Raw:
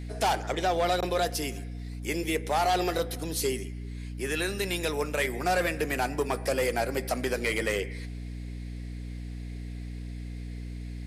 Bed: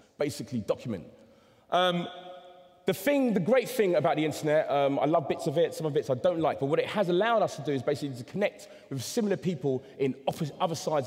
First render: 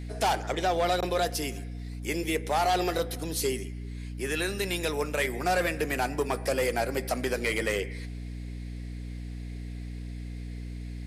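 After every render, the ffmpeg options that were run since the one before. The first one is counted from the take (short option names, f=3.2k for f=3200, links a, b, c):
-af anull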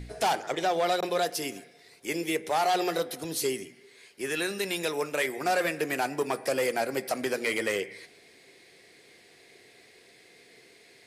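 -af "bandreject=f=60:t=h:w=4,bandreject=f=120:t=h:w=4,bandreject=f=180:t=h:w=4,bandreject=f=240:t=h:w=4,bandreject=f=300:t=h:w=4"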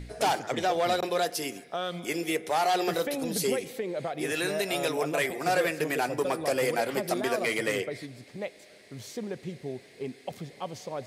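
-filter_complex "[1:a]volume=-8dB[a];[0:a][a]amix=inputs=2:normalize=0"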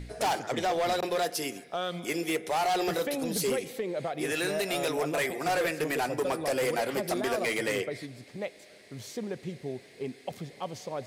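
-af "volume=23.5dB,asoftclip=hard,volume=-23.5dB"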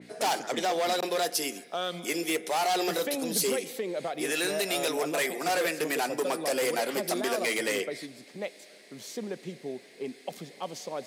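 -af "highpass=f=180:w=0.5412,highpass=f=180:w=1.3066,adynamicequalizer=threshold=0.00447:dfrequency=3000:dqfactor=0.7:tfrequency=3000:tqfactor=0.7:attack=5:release=100:ratio=0.375:range=2.5:mode=boostabove:tftype=highshelf"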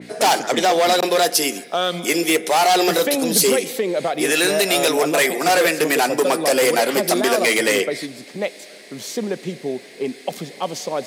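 -af "volume=11.5dB"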